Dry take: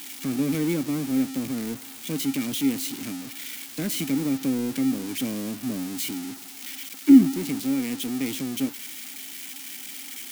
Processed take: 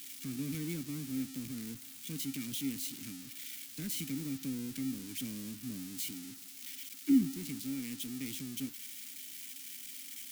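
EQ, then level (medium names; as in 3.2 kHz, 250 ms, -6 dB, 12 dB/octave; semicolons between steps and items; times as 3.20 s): amplifier tone stack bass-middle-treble 6-0-2; +6.5 dB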